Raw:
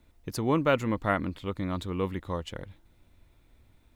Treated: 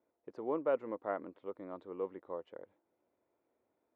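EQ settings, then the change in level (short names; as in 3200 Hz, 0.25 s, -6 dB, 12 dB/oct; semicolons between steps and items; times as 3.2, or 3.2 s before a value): ladder band-pass 580 Hz, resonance 30%; +3.0 dB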